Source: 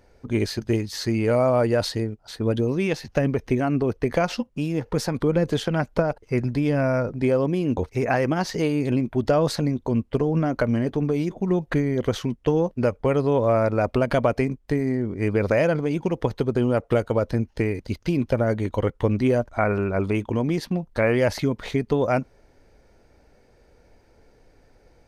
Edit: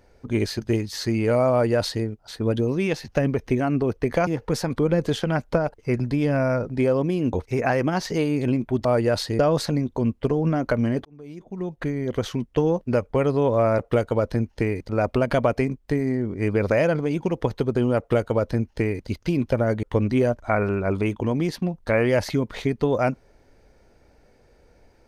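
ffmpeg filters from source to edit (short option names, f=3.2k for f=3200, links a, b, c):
-filter_complex "[0:a]asplit=8[a][b][c][d][e][f][g][h];[a]atrim=end=4.272[i];[b]atrim=start=4.708:end=9.292[j];[c]atrim=start=1.508:end=2.052[k];[d]atrim=start=9.288:end=10.95,asetpts=PTS-STARTPTS,afade=t=out:st=1.658:d=0.004:c=hsin[l];[e]atrim=start=10.95:end=13.692,asetpts=PTS-STARTPTS,afade=t=in:d=1.41[m];[f]atrim=start=16.778:end=17.882[n];[g]atrim=start=13.688:end=18.632[o];[h]atrim=start=18.918[p];[i][j]acrossfade=d=0.004:c1=hsin:c2=hsin[q];[q][k]acrossfade=d=0.004:c1=hsin:c2=hsin[r];[l][m]concat=n=2:v=0:a=1[s];[r][s]acrossfade=d=0.004:c1=hsin:c2=hsin[t];[t][n]acrossfade=d=0.004:c1=hsin:c2=hsin[u];[u][o]acrossfade=d=0.004:c1=hsin:c2=hsin[v];[v][p]acrossfade=d=0.004:c1=hsin:c2=hsin"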